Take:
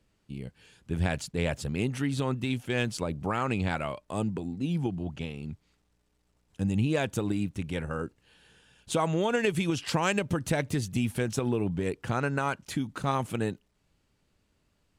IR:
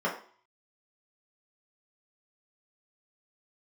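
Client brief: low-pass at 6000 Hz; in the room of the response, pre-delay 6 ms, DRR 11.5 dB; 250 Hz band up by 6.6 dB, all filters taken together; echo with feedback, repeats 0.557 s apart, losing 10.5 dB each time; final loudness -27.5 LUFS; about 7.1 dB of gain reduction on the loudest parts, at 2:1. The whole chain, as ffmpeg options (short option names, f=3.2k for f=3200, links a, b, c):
-filter_complex "[0:a]lowpass=6k,equalizer=f=250:t=o:g=8.5,acompressor=threshold=-31dB:ratio=2,aecho=1:1:557|1114|1671:0.299|0.0896|0.0269,asplit=2[a][b];[1:a]atrim=start_sample=2205,adelay=6[c];[b][c]afir=irnorm=-1:irlink=0,volume=-22dB[d];[a][d]amix=inputs=2:normalize=0,volume=4.5dB"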